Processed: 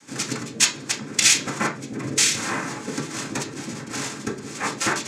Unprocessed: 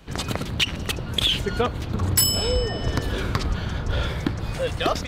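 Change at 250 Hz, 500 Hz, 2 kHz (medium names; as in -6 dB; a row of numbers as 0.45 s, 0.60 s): 0.0 dB, -6.0 dB, +5.0 dB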